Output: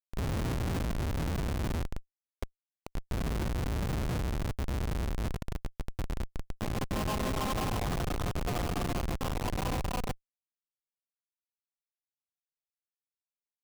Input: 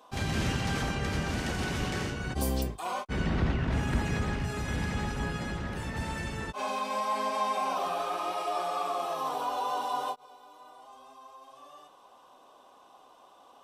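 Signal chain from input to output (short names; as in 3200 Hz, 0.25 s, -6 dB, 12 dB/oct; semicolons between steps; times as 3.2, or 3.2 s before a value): 1.83–3.05 Chebyshev band-pass 400–2000 Hz, order 2; Schmitt trigger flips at -26.5 dBFS; gain +2 dB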